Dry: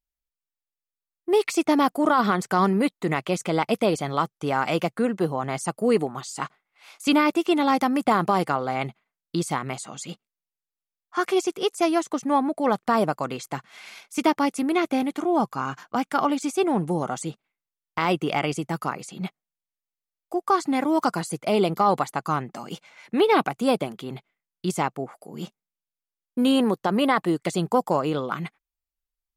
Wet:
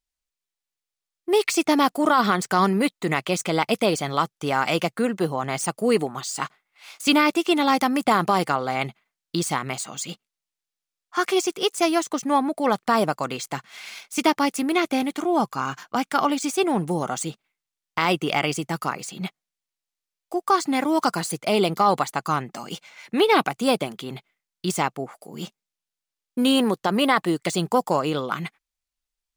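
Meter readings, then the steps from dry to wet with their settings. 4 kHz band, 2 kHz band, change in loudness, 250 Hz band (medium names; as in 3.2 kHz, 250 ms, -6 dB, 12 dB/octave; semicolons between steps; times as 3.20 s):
+5.5 dB, +3.5 dB, +1.0 dB, 0.0 dB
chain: median filter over 3 samples; treble shelf 2.1 kHz +8 dB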